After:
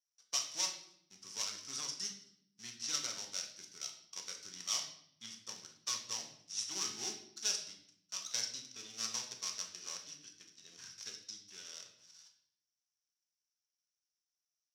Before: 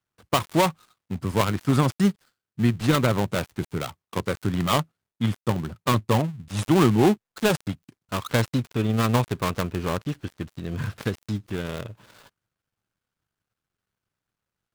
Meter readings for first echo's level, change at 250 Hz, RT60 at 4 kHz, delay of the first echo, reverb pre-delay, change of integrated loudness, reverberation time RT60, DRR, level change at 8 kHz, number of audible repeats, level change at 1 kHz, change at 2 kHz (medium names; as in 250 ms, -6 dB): no echo, -36.0 dB, 0.65 s, no echo, 3 ms, -14.5 dB, 0.70 s, 1.5 dB, +1.0 dB, no echo, -25.0 dB, -18.5 dB